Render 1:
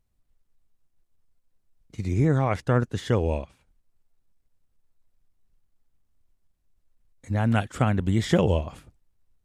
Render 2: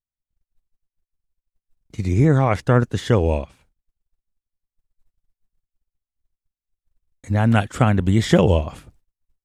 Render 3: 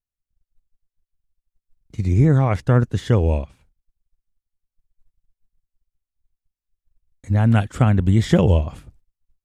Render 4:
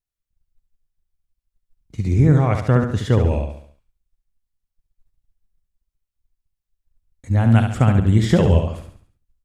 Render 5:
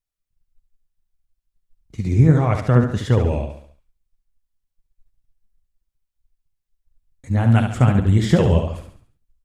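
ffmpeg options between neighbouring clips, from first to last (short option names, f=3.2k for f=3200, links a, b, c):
-af "agate=range=-30dB:threshold=-59dB:ratio=16:detection=peak,volume=6dB"
-af "lowshelf=f=190:g=8.5,volume=-4dB"
-af "aecho=1:1:70|140|210|280|350:0.473|0.208|0.0916|0.0403|0.0177"
-af "flanger=delay=0.7:depth=8.3:regen=56:speed=1.6:shape=triangular,volume=4dB"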